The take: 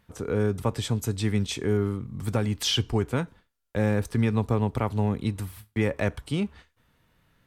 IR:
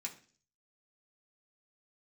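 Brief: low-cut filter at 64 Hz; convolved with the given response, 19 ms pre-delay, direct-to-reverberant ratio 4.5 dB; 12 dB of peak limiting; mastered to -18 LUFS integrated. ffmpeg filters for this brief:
-filter_complex "[0:a]highpass=64,alimiter=limit=0.0668:level=0:latency=1,asplit=2[s0][s1];[1:a]atrim=start_sample=2205,adelay=19[s2];[s1][s2]afir=irnorm=-1:irlink=0,volume=0.708[s3];[s0][s3]amix=inputs=2:normalize=0,volume=5.62"

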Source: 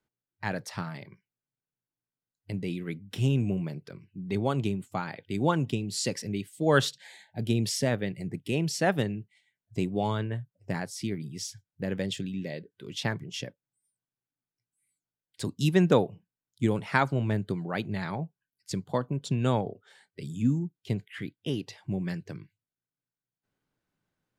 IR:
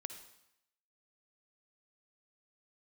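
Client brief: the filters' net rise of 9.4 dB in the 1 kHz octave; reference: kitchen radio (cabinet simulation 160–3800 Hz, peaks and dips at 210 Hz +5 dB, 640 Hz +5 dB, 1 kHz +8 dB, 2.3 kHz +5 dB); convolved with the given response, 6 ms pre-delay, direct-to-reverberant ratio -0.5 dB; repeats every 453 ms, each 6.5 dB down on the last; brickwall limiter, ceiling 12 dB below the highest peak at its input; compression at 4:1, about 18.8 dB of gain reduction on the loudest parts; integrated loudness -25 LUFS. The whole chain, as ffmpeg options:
-filter_complex "[0:a]equalizer=f=1000:t=o:g=5.5,acompressor=threshold=0.0112:ratio=4,alimiter=level_in=2.37:limit=0.0631:level=0:latency=1,volume=0.422,aecho=1:1:453|906|1359|1812|2265|2718:0.473|0.222|0.105|0.0491|0.0231|0.0109,asplit=2[s0][s1];[1:a]atrim=start_sample=2205,adelay=6[s2];[s1][s2]afir=irnorm=-1:irlink=0,volume=1.5[s3];[s0][s3]amix=inputs=2:normalize=0,highpass=160,equalizer=f=210:t=q:w=4:g=5,equalizer=f=640:t=q:w=4:g=5,equalizer=f=1000:t=q:w=4:g=8,equalizer=f=2300:t=q:w=4:g=5,lowpass=f=3800:w=0.5412,lowpass=f=3800:w=1.3066,volume=5.01"

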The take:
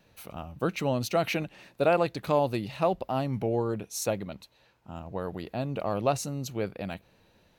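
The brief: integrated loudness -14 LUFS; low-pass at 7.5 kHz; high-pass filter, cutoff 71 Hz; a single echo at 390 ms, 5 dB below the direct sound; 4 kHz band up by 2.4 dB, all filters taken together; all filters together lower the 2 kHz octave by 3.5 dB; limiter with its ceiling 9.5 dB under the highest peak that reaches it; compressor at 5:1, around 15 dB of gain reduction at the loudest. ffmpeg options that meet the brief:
-af "highpass=71,lowpass=7500,equalizer=f=2000:t=o:g=-7,equalizer=f=4000:t=o:g=5.5,acompressor=threshold=0.0141:ratio=5,alimiter=level_in=2.82:limit=0.0631:level=0:latency=1,volume=0.355,aecho=1:1:390:0.562,volume=28.2"

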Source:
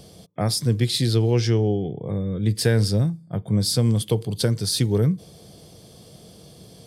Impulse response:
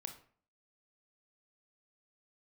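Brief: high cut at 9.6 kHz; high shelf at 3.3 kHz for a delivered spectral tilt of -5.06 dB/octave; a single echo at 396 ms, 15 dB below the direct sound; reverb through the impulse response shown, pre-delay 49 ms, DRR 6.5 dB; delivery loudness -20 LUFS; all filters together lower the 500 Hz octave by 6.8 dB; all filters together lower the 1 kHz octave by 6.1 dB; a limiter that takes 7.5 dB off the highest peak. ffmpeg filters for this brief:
-filter_complex "[0:a]lowpass=9600,equalizer=f=500:t=o:g=-7.5,equalizer=f=1000:t=o:g=-6,highshelf=f=3300:g=6,alimiter=limit=0.188:level=0:latency=1,aecho=1:1:396:0.178,asplit=2[s0][s1];[1:a]atrim=start_sample=2205,adelay=49[s2];[s1][s2]afir=irnorm=-1:irlink=0,volume=0.708[s3];[s0][s3]amix=inputs=2:normalize=0,volume=1.41"

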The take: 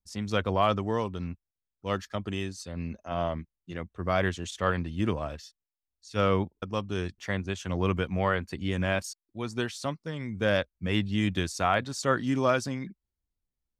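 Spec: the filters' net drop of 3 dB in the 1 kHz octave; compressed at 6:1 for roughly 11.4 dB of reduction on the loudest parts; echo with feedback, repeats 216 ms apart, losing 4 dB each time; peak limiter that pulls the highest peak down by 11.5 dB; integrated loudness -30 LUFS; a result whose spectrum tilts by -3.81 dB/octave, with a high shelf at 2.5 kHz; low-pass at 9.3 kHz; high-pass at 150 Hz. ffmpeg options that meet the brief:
-af "highpass=150,lowpass=9300,equalizer=f=1000:t=o:g=-6,highshelf=f=2500:g=8,acompressor=threshold=0.02:ratio=6,alimiter=level_in=2.51:limit=0.0631:level=0:latency=1,volume=0.398,aecho=1:1:216|432|648|864|1080|1296|1512|1728|1944:0.631|0.398|0.25|0.158|0.0994|0.0626|0.0394|0.0249|0.0157,volume=3.55"

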